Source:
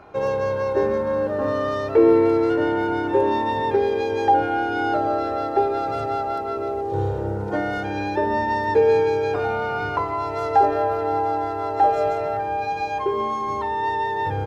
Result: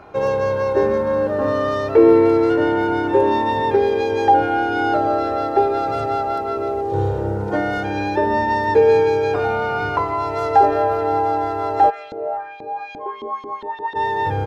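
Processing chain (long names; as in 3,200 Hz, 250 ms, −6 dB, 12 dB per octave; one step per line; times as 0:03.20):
0:11.89–0:13.95: auto-filter band-pass saw up 1.4 Hz → 7.5 Hz 270–4,000 Hz
level +3.5 dB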